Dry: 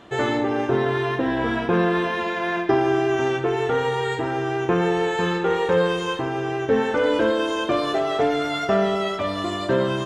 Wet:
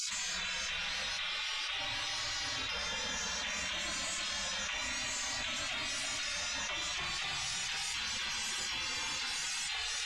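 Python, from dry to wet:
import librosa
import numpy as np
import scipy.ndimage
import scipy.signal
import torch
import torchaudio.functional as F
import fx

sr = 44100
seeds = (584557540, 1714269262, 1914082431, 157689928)

p1 = scipy.signal.sosfilt(scipy.signal.butter(2, 6100.0, 'lowpass', fs=sr, output='sos'), x)
p2 = fx.spec_gate(p1, sr, threshold_db=-30, keep='weak')
p3 = fx.high_shelf(p2, sr, hz=2500.0, db=8.5)
p4 = 10.0 ** (-27.5 / 20.0) * np.tanh(p3 / 10.0 ** (-27.5 / 20.0))
p5 = p4 + fx.echo_single(p4, sr, ms=326, db=-10.0, dry=0)
y = fx.env_flatten(p5, sr, amount_pct=100)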